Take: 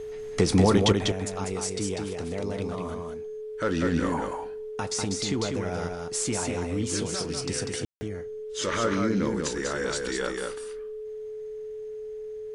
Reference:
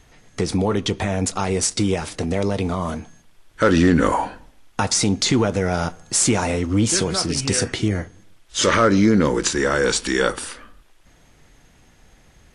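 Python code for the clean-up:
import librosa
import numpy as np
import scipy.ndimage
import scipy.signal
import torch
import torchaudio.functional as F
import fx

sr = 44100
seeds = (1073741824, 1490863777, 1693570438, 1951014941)

y = fx.notch(x, sr, hz=430.0, q=30.0)
y = fx.fix_ambience(y, sr, seeds[0], print_start_s=11.95, print_end_s=12.45, start_s=7.85, end_s=8.01)
y = fx.fix_echo_inverse(y, sr, delay_ms=195, level_db=-4.0)
y = fx.gain(y, sr, db=fx.steps((0.0, 0.0), (0.92, 11.5)))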